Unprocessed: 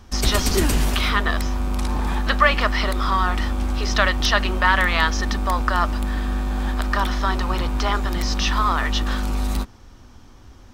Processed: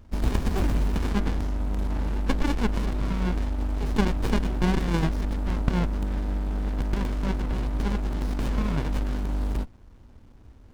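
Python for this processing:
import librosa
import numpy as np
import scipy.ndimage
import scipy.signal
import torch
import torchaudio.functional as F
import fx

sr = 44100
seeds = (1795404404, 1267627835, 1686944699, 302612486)

y = fx.running_max(x, sr, window=65)
y = F.gain(torch.from_numpy(y), -3.5).numpy()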